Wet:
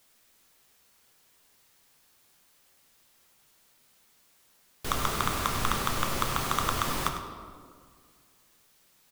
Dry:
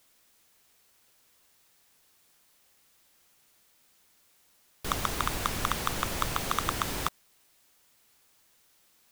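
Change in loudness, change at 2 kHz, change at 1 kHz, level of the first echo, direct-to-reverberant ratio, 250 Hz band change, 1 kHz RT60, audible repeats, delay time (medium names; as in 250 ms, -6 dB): +1.5 dB, +1.5 dB, +2.0 dB, -12.0 dB, 3.0 dB, +2.0 dB, 1.8 s, 1, 101 ms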